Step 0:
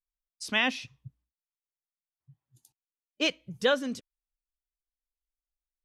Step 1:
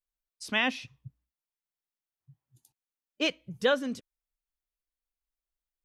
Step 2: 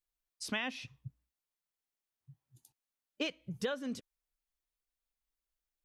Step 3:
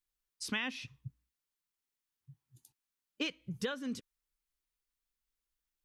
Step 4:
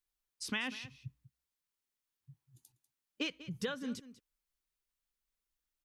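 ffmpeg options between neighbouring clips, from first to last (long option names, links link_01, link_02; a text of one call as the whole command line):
ffmpeg -i in.wav -af "equalizer=frequency=6100:width=0.59:gain=-3.5" out.wav
ffmpeg -i in.wav -af "acompressor=threshold=-32dB:ratio=12" out.wav
ffmpeg -i in.wav -af "equalizer=frequency=650:width=2.7:gain=-10,volume=1dB" out.wav
ffmpeg -i in.wav -af "aecho=1:1:194:0.158,volume=-1dB" out.wav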